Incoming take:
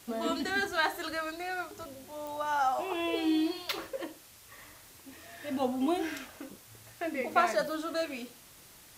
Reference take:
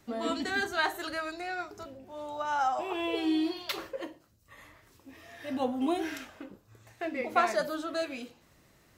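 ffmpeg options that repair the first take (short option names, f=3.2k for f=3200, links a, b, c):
-af "adeclick=t=4,afwtdn=0.002"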